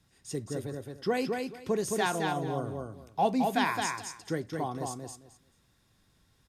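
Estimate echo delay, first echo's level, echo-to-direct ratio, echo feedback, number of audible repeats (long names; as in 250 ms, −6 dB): 217 ms, −4.0 dB, −4.0 dB, 19%, 3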